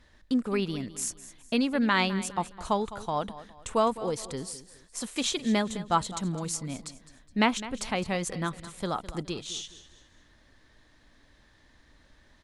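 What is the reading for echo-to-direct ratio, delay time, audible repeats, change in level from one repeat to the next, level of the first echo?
-15.0 dB, 208 ms, 3, -9.0 dB, -15.5 dB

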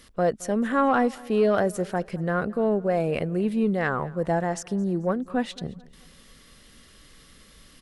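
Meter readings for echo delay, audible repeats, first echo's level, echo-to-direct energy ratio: 218 ms, 2, -22.5 dB, -21.5 dB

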